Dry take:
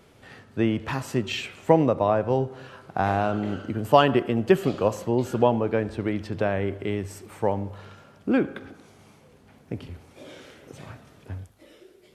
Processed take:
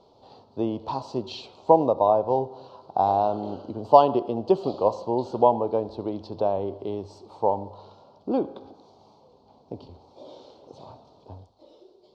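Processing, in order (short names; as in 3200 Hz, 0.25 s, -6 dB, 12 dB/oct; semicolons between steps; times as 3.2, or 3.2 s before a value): EQ curve 160 Hz 0 dB, 950 Hz +15 dB, 1800 Hz -22 dB, 4300 Hz +12 dB, 11000 Hz -24 dB; gain -9 dB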